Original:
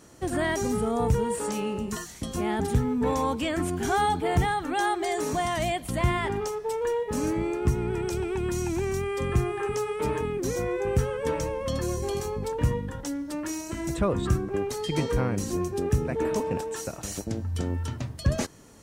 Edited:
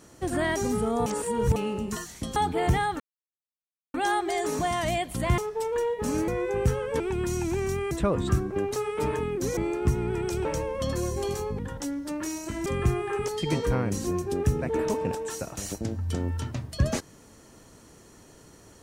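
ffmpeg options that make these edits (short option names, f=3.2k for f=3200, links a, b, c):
-filter_complex "[0:a]asplit=15[a][b][c][d][e][f][g][h][i][j][k][l][m][n][o];[a]atrim=end=1.062[p];[b]atrim=start=1.058:end=1.562,asetpts=PTS-STARTPTS,areverse[q];[c]atrim=start=1.558:end=2.362[r];[d]atrim=start=4.038:end=4.68,asetpts=PTS-STARTPTS,afade=t=out:st=0.638:d=0.004:c=hsin,apad=pad_dur=0.94[s];[e]atrim=start=4.68:end=6.122,asetpts=PTS-STARTPTS,afade=t=in:d=0.004:c=hsin[t];[f]atrim=start=6.468:end=7.372[u];[g]atrim=start=10.588:end=11.312[v];[h]atrim=start=8.248:end=9.162[w];[i]atrim=start=13.888:end=14.742[x];[j]atrim=start=9.778:end=10.592[y];[k]atrim=start=7.368:end=8.252[z];[l]atrim=start=11.308:end=12.452[aa];[m]atrim=start=12.818:end=13.892[ab];[n]atrim=start=9.158:end=9.782[ac];[o]atrim=start=14.738[ad];[p][q]acrossfade=d=0.004:c1=hsin:c2=hsin[ae];[ae][r]acrossfade=d=0.004:c1=hsin:c2=hsin[af];[s][t]concat=n=2:v=0:a=1[ag];[af][ag]acrossfade=d=0.004:c1=hsin:c2=hsin[ah];[ah][u]acrossfade=d=0.004:c1=hsin:c2=hsin[ai];[ai][v]acrossfade=d=0.004:c1=hsin:c2=hsin[aj];[aj][w]acrossfade=d=0.004:c1=hsin:c2=hsin[ak];[ak][x]acrossfade=d=0.004:c1=hsin:c2=hsin[al];[al][y]acrossfade=d=0.004:c1=hsin:c2=hsin[am];[am][z]acrossfade=d=0.004:c1=hsin:c2=hsin[an];[an][aa]acrossfade=d=0.004:c1=hsin:c2=hsin[ao];[ao][ab]acrossfade=d=0.004:c1=hsin:c2=hsin[ap];[ap][ac]acrossfade=d=0.004:c1=hsin:c2=hsin[aq];[aq][ad]acrossfade=d=0.004:c1=hsin:c2=hsin"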